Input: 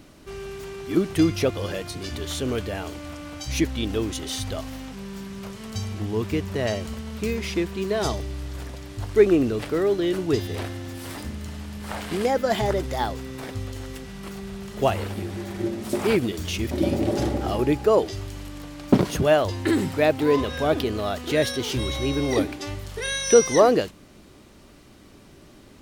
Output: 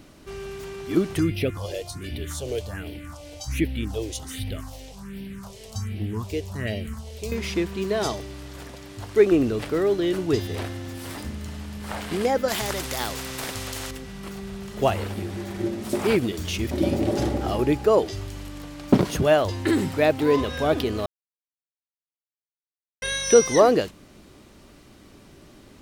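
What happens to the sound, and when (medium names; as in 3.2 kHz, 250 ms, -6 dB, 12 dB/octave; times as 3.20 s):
1.19–7.32 s: phase shifter stages 4, 1.3 Hz, lowest notch 200–1200 Hz
8.03–9.32 s: high-pass 170 Hz 6 dB/octave
12.48–13.91 s: spectrum-flattening compressor 2:1
21.06–23.02 s: mute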